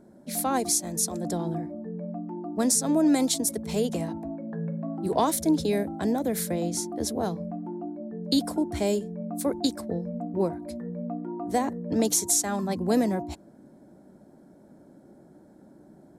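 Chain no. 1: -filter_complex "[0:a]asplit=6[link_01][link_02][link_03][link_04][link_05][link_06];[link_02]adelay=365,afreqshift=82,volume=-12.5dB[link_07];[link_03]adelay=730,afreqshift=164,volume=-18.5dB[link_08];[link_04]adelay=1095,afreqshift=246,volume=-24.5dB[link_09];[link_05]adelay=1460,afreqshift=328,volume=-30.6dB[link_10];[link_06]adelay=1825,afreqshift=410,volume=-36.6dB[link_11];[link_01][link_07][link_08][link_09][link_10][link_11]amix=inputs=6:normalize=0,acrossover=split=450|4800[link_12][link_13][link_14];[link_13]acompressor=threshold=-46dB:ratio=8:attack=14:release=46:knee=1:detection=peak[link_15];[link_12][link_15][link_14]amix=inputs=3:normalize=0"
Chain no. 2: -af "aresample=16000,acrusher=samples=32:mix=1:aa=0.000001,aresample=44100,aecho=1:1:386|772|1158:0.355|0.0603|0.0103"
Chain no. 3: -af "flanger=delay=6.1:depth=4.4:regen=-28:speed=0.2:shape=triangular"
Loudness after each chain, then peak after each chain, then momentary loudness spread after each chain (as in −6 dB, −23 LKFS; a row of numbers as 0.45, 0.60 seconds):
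−29.0, −28.5, −31.0 LKFS; −11.0, −11.5, −14.5 dBFS; 12, 11, 13 LU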